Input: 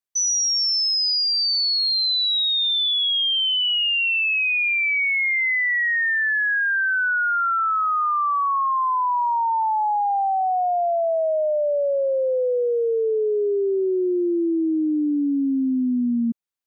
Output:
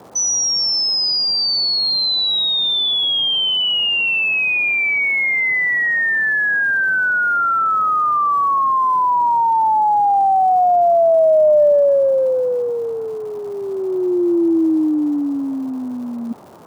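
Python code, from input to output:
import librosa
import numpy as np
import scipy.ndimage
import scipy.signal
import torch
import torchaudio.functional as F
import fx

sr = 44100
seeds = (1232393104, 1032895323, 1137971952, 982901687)

y = fx.small_body(x, sr, hz=(240.0, 410.0), ring_ms=25, db=14)
y = fx.over_compress(y, sr, threshold_db=-14.0, ratio=-0.5)
y = fx.dmg_noise_band(y, sr, seeds[0], low_hz=98.0, high_hz=1000.0, level_db=-42.0)
y = fx.dmg_crackle(y, sr, seeds[1], per_s=380.0, level_db=-39.0)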